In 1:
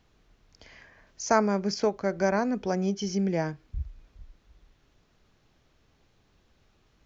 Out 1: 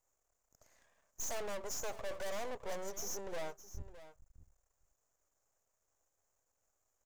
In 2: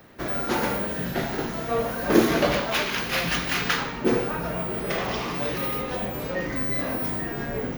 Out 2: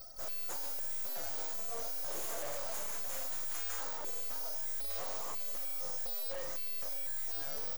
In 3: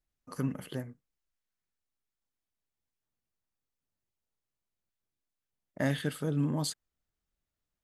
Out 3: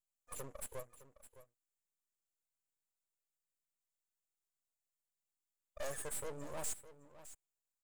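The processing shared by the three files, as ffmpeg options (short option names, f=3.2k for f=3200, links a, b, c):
-af "crystalizer=i=8:c=0,firequalizer=gain_entry='entry(110,0);entry(190,-20);entry(280,-7);entry(530,13);entry(3700,-22);entry(7100,13);entry(11000,2)':delay=0.05:min_phase=1,afftdn=nr=16:nf=-27,aeval=exprs='max(val(0),0)':c=same,aeval=exprs='(tanh(14.1*val(0)+0.7)-tanh(0.7))/14.1':c=same,aecho=1:1:611:0.178,volume=-2.5dB"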